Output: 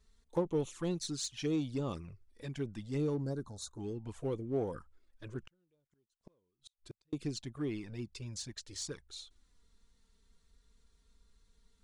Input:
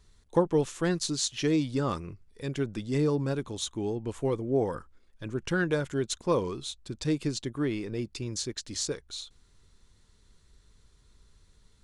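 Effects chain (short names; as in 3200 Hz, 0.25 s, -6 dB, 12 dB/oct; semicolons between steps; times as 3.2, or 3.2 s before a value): 3.14–3.8 elliptic band-stop 1600–4000 Hz; envelope flanger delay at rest 4.7 ms, full sweep at -24 dBFS; in parallel at -9.5 dB: hard clip -30 dBFS, distortion -7 dB; 5.47–7.13 on the sum: flipped gate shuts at -28 dBFS, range -42 dB; gain -8 dB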